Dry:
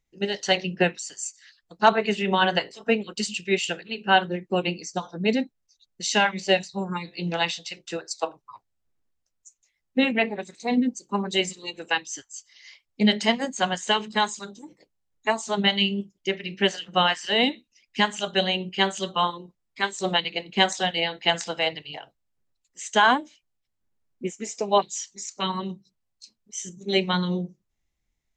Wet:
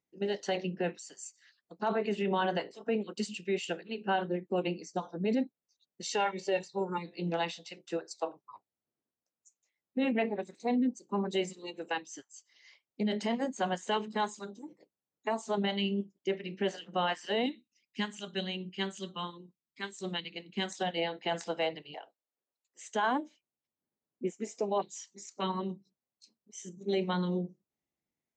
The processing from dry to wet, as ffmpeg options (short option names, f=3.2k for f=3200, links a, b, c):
-filter_complex "[0:a]asettb=1/sr,asplit=3[a][b][c];[a]atrim=end=6.024[d];[b]atrim=start=6.02:end=6.98,asetpts=PTS-STARTPTS,afade=t=in:d=0.004:c=qsin,afade=t=out:st=0.956:d=0.004:c=qsin,aecho=1:1:2.2:0.69,atrim=end_sample=42336[e];[c]atrim=start=6.976[f];[d][e]acrossfade=d=0.004:c1=hsin:c2=qsin[g];[g][f]acrossfade=d=0.004:c1=qsin:c2=hsin,asettb=1/sr,asplit=3[h][i][j];[h]atrim=end=17.464[k];[i]atrim=start=17.46:end=20.81,asetpts=PTS-STARTPTS,afade=t=in:d=0.004:c=qsin,afade=t=out:st=3.346:d=0.004:c=qsin,equalizer=f=680:t=o:w=1.8:g=-15[l];[j]atrim=start=20.806[m];[k][l]acrossfade=d=0.004:c1=hsin:c2=qsin[n];[n][m]acrossfade=d=0.004:c1=qsin:c2=hsin,asettb=1/sr,asplit=3[o][p][q];[o]atrim=end=21.944[r];[p]atrim=start=21.94:end=22.88,asetpts=PTS-STARTPTS,afade=t=in:d=0.004:c=qsin,afade=t=out:st=0.936:d=0.004:c=qsin,highpass=430[s];[q]atrim=start=22.876[t];[r][s]acrossfade=d=0.004:c1=hsin:c2=qsin[u];[u][t]acrossfade=d=0.004:c1=qsin:c2=hsin,tiltshelf=f=1.1k:g=6.5,alimiter=limit=-14.5dB:level=0:latency=1:release=19,highpass=220,volume=-6.5dB"